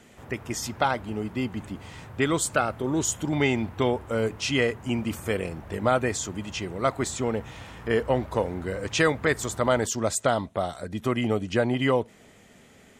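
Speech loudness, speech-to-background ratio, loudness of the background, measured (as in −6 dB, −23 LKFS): −27.0 LKFS, 17.5 dB, −44.5 LKFS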